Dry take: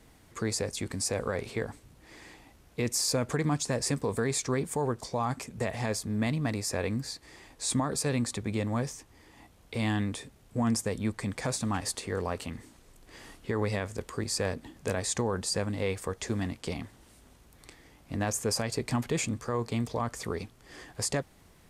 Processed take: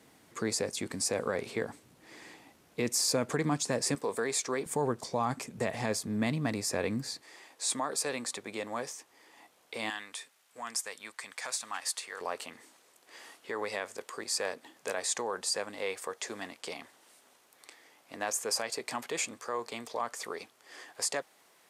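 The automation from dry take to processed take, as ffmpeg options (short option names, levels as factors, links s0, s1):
-af "asetnsamples=n=441:p=0,asendcmd='3.95 highpass f 380;4.66 highpass f 150;7.22 highpass f 470;9.9 highpass f 1100;12.21 highpass f 530',highpass=180"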